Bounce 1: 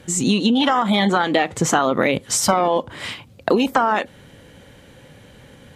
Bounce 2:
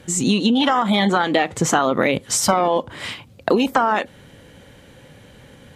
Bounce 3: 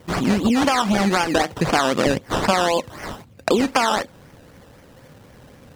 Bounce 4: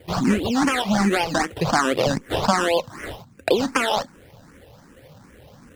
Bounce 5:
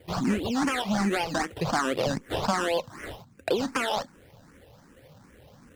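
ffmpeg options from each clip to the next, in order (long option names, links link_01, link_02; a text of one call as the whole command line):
ffmpeg -i in.wav -af anull out.wav
ffmpeg -i in.wav -filter_complex "[0:a]acrusher=samples=16:mix=1:aa=0.000001:lfo=1:lforange=9.6:lforate=3.9,acrossover=split=8900[link_01][link_02];[link_02]acompressor=threshold=-45dB:ratio=4:attack=1:release=60[link_03];[link_01][link_03]amix=inputs=2:normalize=0,volume=-1dB" out.wav
ffmpeg -i in.wav -filter_complex "[0:a]asplit=2[link_01][link_02];[link_02]afreqshift=2.6[link_03];[link_01][link_03]amix=inputs=2:normalize=1,volume=1.5dB" out.wav
ffmpeg -i in.wav -af "asoftclip=type=tanh:threshold=-9dB,volume=-5.5dB" out.wav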